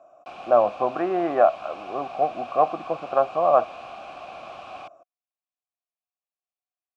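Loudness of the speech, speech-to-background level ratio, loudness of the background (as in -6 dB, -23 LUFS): -23.0 LUFS, 17.0 dB, -40.0 LUFS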